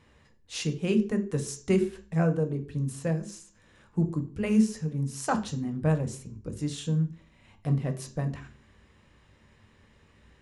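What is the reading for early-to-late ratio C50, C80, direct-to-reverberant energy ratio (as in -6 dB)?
13.0 dB, 17.5 dB, 6.0 dB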